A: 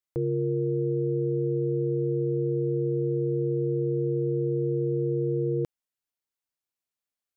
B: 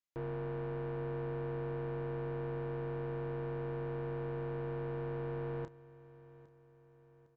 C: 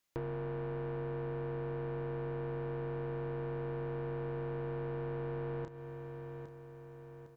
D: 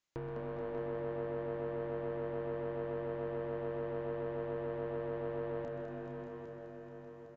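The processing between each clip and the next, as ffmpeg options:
-filter_complex "[0:a]aresample=16000,asoftclip=type=tanh:threshold=-32.5dB,aresample=44100,asplit=2[a][b];[b]adelay=30,volume=-9.5dB[c];[a][c]amix=inputs=2:normalize=0,aecho=1:1:807|1614|2421|3228:0.112|0.0516|0.0237|0.0109,volume=-5dB"
-filter_complex "[0:a]asplit=2[a][b];[b]alimiter=level_in=19dB:limit=-24dB:level=0:latency=1:release=28,volume=-19dB,volume=-1.5dB[c];[a][c]amix=inputs=2:normalize=0,acompressor=threshold=-45dB:ratio=4,volume=6.5dB"
-filter_complex "[0:a]asplit=2[a][b];[b]asplit=4[c][d][e][f];[c]adelay=204,afreqshift=110,volume=-6dB[g];[d]adelay=408,afreqshift=220,volume=-15.6dB[h];[e]adelay=612,afreqshift=330,volume=-25.3dB[i];[f]adelay=816,afreqshift=440,volume=-34.9dB[j];[g][h][i][j]amix=inputs=4:normalize=0[k];[a][k]amix=inputs=2:normalize=0,aresample=16000,aresample=44100,asplit=2[l][m];[m]aecho=0:1:127|241|429|590|621:0.266|0.126|0.376|0.299|0.251[n];[l][n]amix=inputs=2:normalize=0,volume=-3dB"

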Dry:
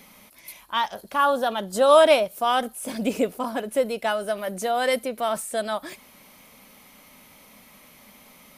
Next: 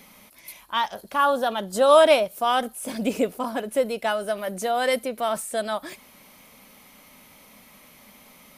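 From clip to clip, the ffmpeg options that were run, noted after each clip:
-af anull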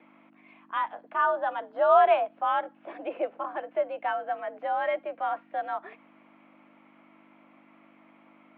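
-filter_complex "[0:a]acrossover=split=340 2200:gain=0.0794 1 0.141[a][b][c];[a][b][c]amix=inputs=3:normalize=0,aeval=exprs='val(0)+0.00562*(sin(2*PI*50*n/s)+sin(2*PI*2*50*n/s)/2+sin(2*PI*3*50*n/s)/3+sin(2*PI*4*50*n/s)/4+sin(2*PI*5*50*n/s)/5)':c=same,highpass=f=160:t=q:w=0.5412,highpass=f=160:t=q:w=1.307,lowpass=f=3.1k:t=q:w=0.5176,lowpass=f=3.1k:t=q:w=0.7071,lowpass=f=3.1k:t=q:w=1.932,afreqshift=71,volume=-3.5dB"

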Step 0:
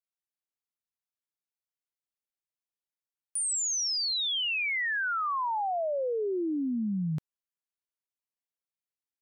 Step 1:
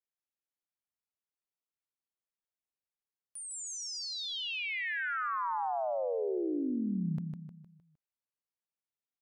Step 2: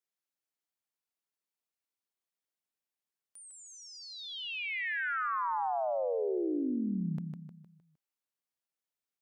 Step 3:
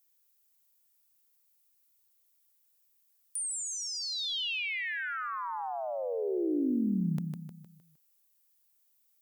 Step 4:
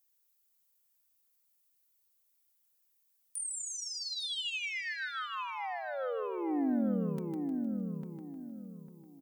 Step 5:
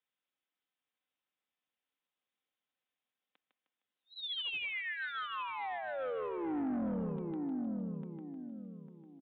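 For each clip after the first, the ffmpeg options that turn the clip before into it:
-af "highshelf=f=3.2k:g=-10,aecho=1:1:154|308|462|616|770:0.562|0.242|0.104|0.0447|0.0192,volume=-4dB"
-filter_complex "[0:a]highpass=150,acrossover=split=3100[a][b];[b]acompressor=threshold=-53dB:ratio=4:attack=1:release=60[c];[a][c]amix=inputs=2:normalize=0,volume=1dB"
-filter_complex "[0:a]acrossover=split=360[a][b];[b]acompressor=threshold=-39dB:ratio=6[c];[a][c]amix=inputs=2:normalize=0,aemphasis=mode=production:type=75fm,volume=4.5dB"
-filter_complex "[0:a]aecho=1:1:3.9:0.46,asplit=2[a][b];[b]adelay=850,lowpass=f=1.6k:p=1,volume=-4dB,asplit=2[c][d];[d]adelay=850,lowpass=f=1.6k:p=1,volume=0.31,asplit=2[e][f];[f]adelay=850,lowpass=f=1.6k:p=1,volume=0.31,asplit=2[g][h];[h]adelay=850,lowpass=f=1.6k:p=1,volume=0.31[i];[c][e][g][i]amix=inputs=4:normalize=0[j];[a][j]amix=inputs=2:normalize=0,volume=-4dB"
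-af "highpass=130,aresample=8000,asoftclip=type=tanh:threshold=-31dB,aresample=44100"

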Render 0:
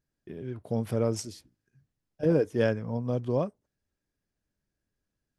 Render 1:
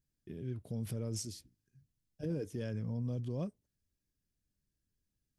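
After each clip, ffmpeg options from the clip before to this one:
-af "equalizer=f=930:w=0.44:g=-14.5,alimiter=level_in=6.5dB:limit=-24dB:level=0:latency=1:release=22,volume=-6.5dB,volume=1dB"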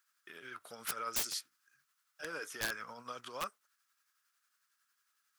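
-af "highpass=f=1.3k:t=q:w=6.5,aeval=exprs='(mod(89.1*val(0)+1,2)-1)/89.1':c=same,tremolo=f=11:d=0.39,volume=13dB"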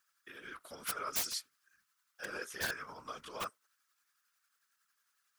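-af "afftfilt=real='hypot(re,im)*cos(2*PI*random(0))':imag='hypot(re,im)*sin(2*PI*random(1))':win_size=512:overlap=0.75,volume=6dB"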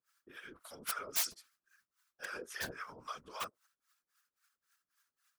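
-filter_complex "[0:a]acrossover=split=640[a][b];[a]aeval=exprs='val(0)*(1-1/2+1/2*cos(2*PI*3.7*n/s))':c=same[c];[b]aeval=exprs='val(0)*(1-1/2-1/2*cos(2*PI*3.7*n/s))':c=same[d];[c][d]amix=inputs=2:normalize=0,volume=3dB"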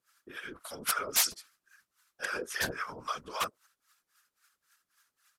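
-af "aresample=32000,aresample=44100,volume=8.5dB"

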